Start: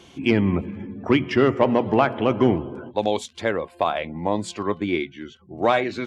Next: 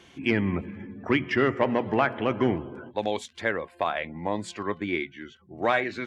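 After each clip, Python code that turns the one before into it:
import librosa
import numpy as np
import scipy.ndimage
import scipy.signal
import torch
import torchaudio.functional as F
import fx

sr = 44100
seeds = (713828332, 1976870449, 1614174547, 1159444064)

y = fx.peak_eq(x, sr, hz=1800.0, db=8.5, octaves=0.76)
y = y * 10.0 ** (-6.0 / 20.0)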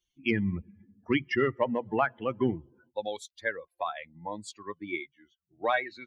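y = fx.bin_expand(x, sr, power=2.0)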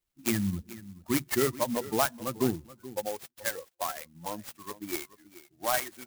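y = fx.filter_lfo_notch(x, sr, shape='square', hz=1.7, low_hz=450.0, high_hz=5200.0, q=2.1)
y = y + 10.0 ** (-17.0 / 20.0) * np.pad(y, (int(429 * sr / 1000.0), 0))[:len(y)]
y = fx.clock_jitter(y, sr, seeds[0], jitter_ms=0.093)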